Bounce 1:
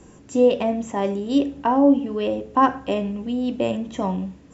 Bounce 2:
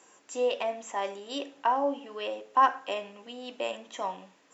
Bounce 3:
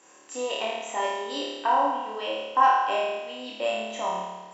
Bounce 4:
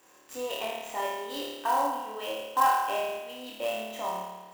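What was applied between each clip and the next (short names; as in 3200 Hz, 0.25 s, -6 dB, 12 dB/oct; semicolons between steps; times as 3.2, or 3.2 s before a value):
HPF 790 Hz 12 dB/oct; gain -2 dB
flutter echo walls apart 4.7 m, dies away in 1.2 s
clock jitter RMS 0.021 ms; gain -4 dB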